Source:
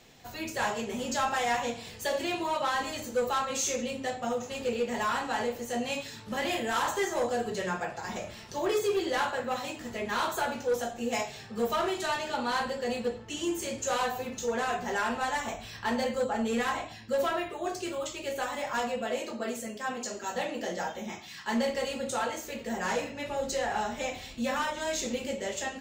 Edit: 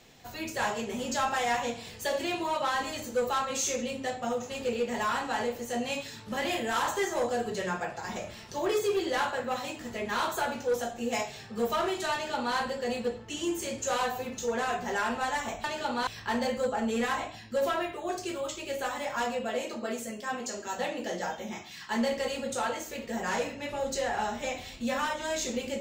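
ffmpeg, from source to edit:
-filter_complex "[0:a]asplit=3[a][b][c];[a]atrim=end=15.642[d];[b]atrim=start=12.128:end=12.562[e];[c]atrim=start=15.638[f];[d][e]acrossfade=d=0.004:c1=hsin:c2=hsin[g];[g][f]acrossfade=d=0.004:c1=hsin:c2=hsin"

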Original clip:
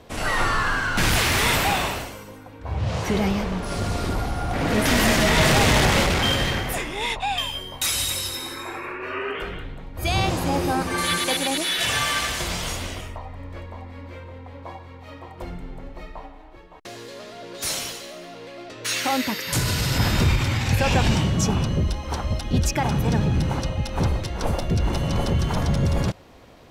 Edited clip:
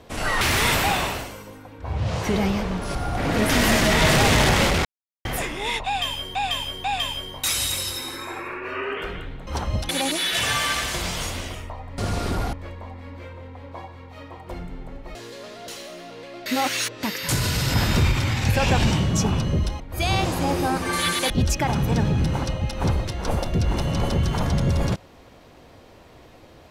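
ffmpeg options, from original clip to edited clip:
-filter_complex "[0:a]asplit=17[a][b][c][d][e][f][g][h][i][j][k][l][m][n][o][p][q];[a]atrim=end=0.412[r];[b]atrim=start=1.218:end=3.762[s];[c]atrim=start=4.308:end=6.21,asetpts=PTS-STARTPTS,afade=t=out:st=1.898:d=0.004:c=hsin[t];[d]atrim=start=6.21:end=6.61,asetpts=PTS-STARTPTS,volume=0[u];[e]atrim=start=6.61:end=7.712,asetpts=PTS-STARTPTS,afade=t=in:d=0.004:c=hsin[v];[f]atrim=start=7.218:end=7.712[w];[g]atrim=start=7.218:end=9.852[x];[h]atrim=start=22.038:end=22.462[y];[i]atrim=start=11.348:end=13.442[z];[j]atrim=start=3.758:end=4.312[aa];[k]atrim=start=13.438:end=16.062[ab];[l]atrim=start=16.908:end=17.442[ac];[m]atrim=start=17.918:end=18.702[ad];[n]atrim=start=18.698:end=19.272,asetpts=PTS-STARTPTS,areverse[ae];[o]atrim=start=19.268:end=22.042[af];[p]atrim=start=9.848:end=11.352[ag];[q]atrim=start=22.458[ah];[r][s]acrossfade=d=0.004:c1=hsin:c2=hsin[ai];[t][u][v]concat=n=3:v=0:a=1[aj];[ai][aj]acrossfade=d=0.004:c1=hsin:c2=hsin[ak];[ak][w]acrossfade=d=0.004:c1=hsin:c2=hsin[al];[al][x]acrossfade=d=0.004:c1=hsin:c2=hsin[am];[am][y]acrossfade=d=0.004:c1=hsin:c2=hsin[an];[an][z]acrossfade=d=0.004:c1=hsin:c2=hsin[ao];[ao][aa]acrossfade=d=0.004:c1=hsin:c2=hsin[ap];[ap][ab]acrossfade=d=0.004:c1=hsin:c2=hsin[aq];[aq][ac]acrossfade=d=0.004:c1=hsin:c2=hsin[ar];[ar][ad]acrossfade=d=0.004:c1=hsin:c2=hsin[as];[as][ae]acrossfade=d=0.004:c1=hsin:c2=hsin[at];[at][af]acrossfade=d=0.004:c1=hsin:c2=hsin[au];[au][ag]acrossfade=d=0.004:c1=hsin:c2=hsin[av];[av][ah]acrossfade=d=0.004:c1=hsin:c2=hsin"

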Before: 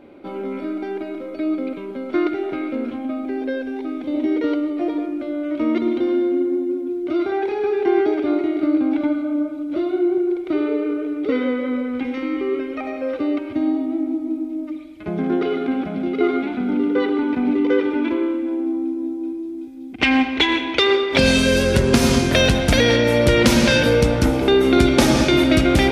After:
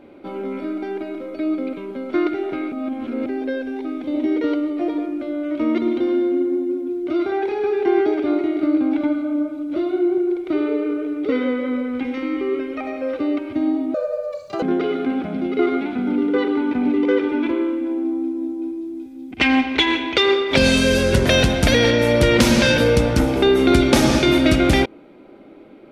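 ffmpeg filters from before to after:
-filter_complex "[0:a]asplit=6[a][b][c][d][e][f];[a]atrim=end=2.722[g];[b]atrim=start=2.718:end=3.262,asetpts=PTS-STARTPTS,areverse[h];[c]atrim=start=3.258:end=13.944[i];[d]atrim=start=13.94:end=15.24,asetpts=PTS-STARTPTS,asetrate=83790,aresample=44100[j];[e]atrim=start=15.236:end=21.872[k];[f]atrim=start=22.308[l];[g][h]acrossfade=d=0.004:c1=hsin:c2=hsin[m];[m][i]acrossfade=d=0.004:c1=hsin:c2=hsin[n];[n][j]acrossfade=d=0.004:c1=hsin:c2=hsin[o];[o][k]acrossfade=d=0.004:c1=hsin:c2=hsin[p];[p][l]acrossfade=d=0.004:c1=hsin:c2=hsin"

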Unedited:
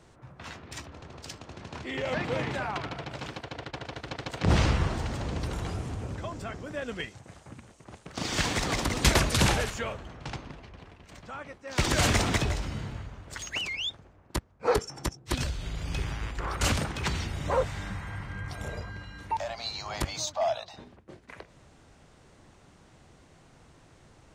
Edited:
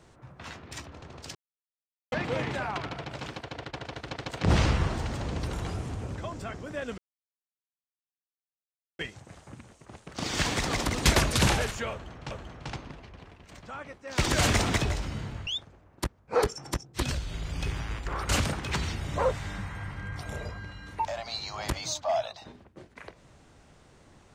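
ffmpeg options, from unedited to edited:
-filter_complex "[0:a]asplit=6[a][b][c][d][e][f];[a]atrim=end=1.35,asetpts=PTS-STARTPTS,afade=t=out:st=1.346:d=0.004:c=hsin[g];[b]atrim=start=1.35:end=2.12,asetpts=PTS-STARTPTS,volume=0[h];[c]atrim=start=2.12:end=6.98,asetpts=PTS-STARTPTS,afade=t=in:d=0.004:c=hsin,afade=t=out:st=4.856:d=0.004:c=hsin,apad=pad_dur=2.01[i];[d]atrim=start=6.98:end=10.302,asetpts=PTS-STARTPTS,afade=t=in:d=0.004:c=hsin[j];[e]atrim=start=9.908:end=13.072[k];[f]atrim=start=13.788[l];[g][h][i][j]concat=n=4:v=0:a=1[m];[m][k]acrossfade=d=0.004:c1=hsin:c2=hsin[n];[n][l]acrossfade=d=0.004:c1=hsin:c2=hsin"

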